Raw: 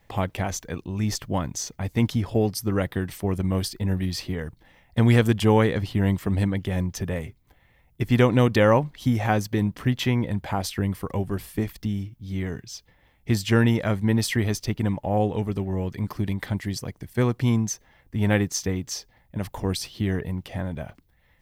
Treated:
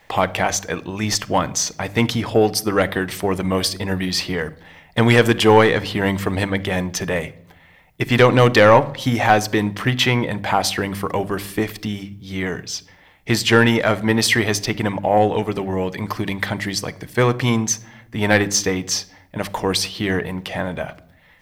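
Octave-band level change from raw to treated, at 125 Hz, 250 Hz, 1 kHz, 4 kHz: +0.5, +3.0, +10.5, +11.5 decibels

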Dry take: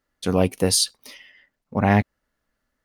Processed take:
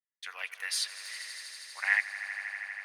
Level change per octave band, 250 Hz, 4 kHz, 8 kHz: below −40 dB, −9.5 dB, −13.0 dB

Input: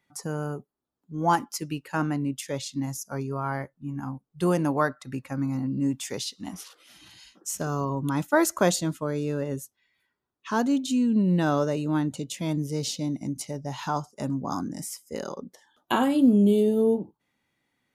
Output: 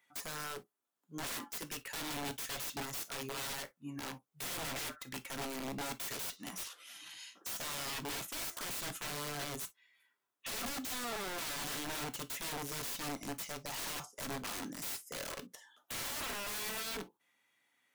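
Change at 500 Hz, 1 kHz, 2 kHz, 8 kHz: −18.5, −13.5, −7.0, −4.5 decibels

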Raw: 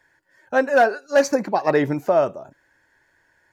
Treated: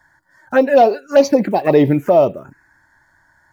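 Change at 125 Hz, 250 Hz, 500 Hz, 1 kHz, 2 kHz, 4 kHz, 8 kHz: +9.5 dB, +8.5 dB, +6.0 dB, +4.0 dB, −2.5 dB, +4.0 dB, can't be measured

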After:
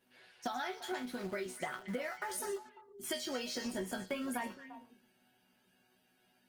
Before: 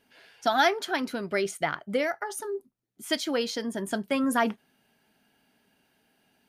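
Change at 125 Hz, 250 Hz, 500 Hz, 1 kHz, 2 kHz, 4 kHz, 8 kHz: −7.5, −11.0, −12.0, −13.0, −12.0, −10.5, −5.5 decibels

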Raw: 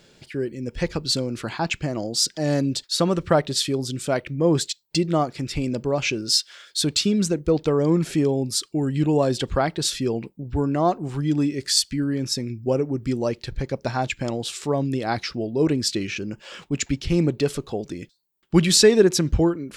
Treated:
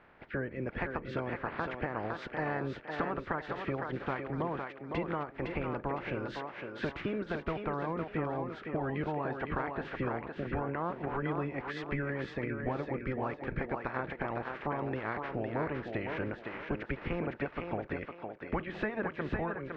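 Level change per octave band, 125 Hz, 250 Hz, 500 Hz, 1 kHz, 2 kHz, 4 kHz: −13.5, −14.5, −13.0, −6.5, −5.0, −27.5 decibels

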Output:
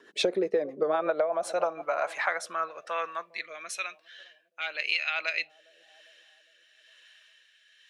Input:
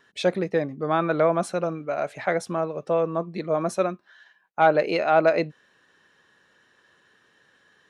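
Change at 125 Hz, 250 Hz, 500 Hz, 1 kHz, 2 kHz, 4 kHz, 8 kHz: below −20 dB, −11.5 dB, −7.5 dB, −7.5 dB, −0.5 dB, +3.5 dB, +0.5 dB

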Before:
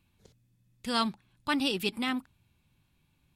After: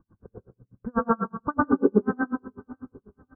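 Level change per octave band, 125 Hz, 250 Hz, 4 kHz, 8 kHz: +10.5 dB, +7.5 dB, below −40 dB, below −30 dB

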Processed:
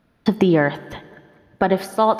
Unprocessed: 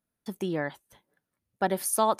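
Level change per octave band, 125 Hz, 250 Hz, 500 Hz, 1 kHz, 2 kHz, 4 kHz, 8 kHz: +14.5 dB, +14.5 dB, +10.5 dB, +7.5 dB, +11.0 dB, +7.5 dB, below −10 dB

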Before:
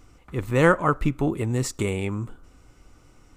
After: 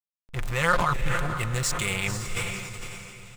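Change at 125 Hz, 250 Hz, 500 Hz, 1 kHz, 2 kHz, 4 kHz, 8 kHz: −3.5, −10.0, −8.0, 0.0, +1.5, +7.5, +6.0 decibels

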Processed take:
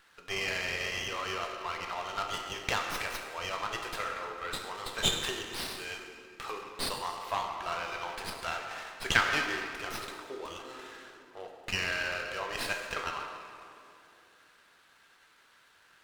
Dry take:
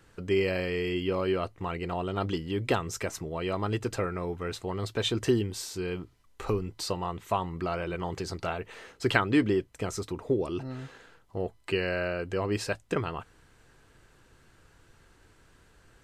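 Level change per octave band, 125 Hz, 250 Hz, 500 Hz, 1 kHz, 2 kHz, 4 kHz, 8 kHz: −14.0, −15.0, −10.5, 0.0, +3.0, +3.5, +1.5 decibels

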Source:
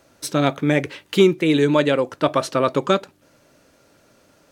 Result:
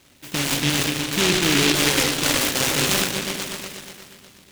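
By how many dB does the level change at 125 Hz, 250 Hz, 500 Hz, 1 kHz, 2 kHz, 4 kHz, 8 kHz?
−1.5, −4.0, −8.0, −3.5, +5.5, +9.5, +15.5 decibels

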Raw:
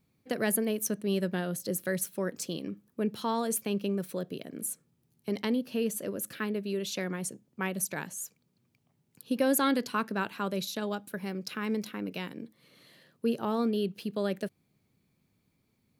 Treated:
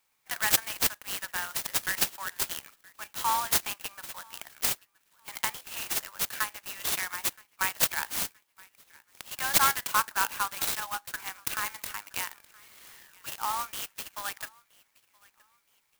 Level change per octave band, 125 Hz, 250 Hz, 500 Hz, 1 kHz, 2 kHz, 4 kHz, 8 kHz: −11.0, −19.0, −14.5, +5.5, +6.0, +7.5, +6.0 decibels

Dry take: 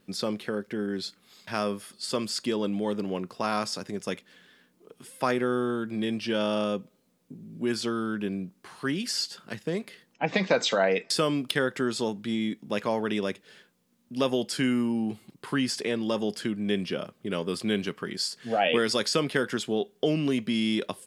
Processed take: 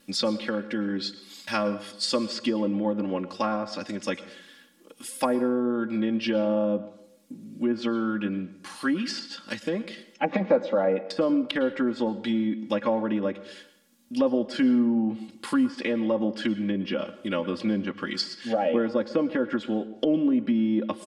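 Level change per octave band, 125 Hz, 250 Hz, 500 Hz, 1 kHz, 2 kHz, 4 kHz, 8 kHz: −1.5, +4.0, +1.5, 0.0, −2.5, −2.5, −5.5 decibels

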